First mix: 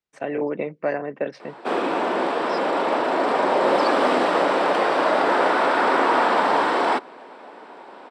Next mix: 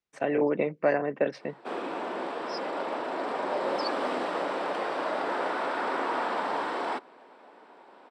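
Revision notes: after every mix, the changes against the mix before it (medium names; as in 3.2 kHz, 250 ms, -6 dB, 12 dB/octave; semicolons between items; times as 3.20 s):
background -11.0 dB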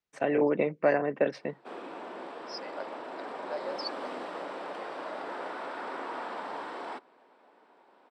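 background -8.0 dB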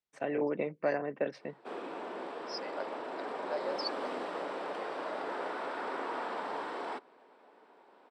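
first voice -6.5 dB; background: add peaking EQ 430 Hz +3.5 dB 0.31 oct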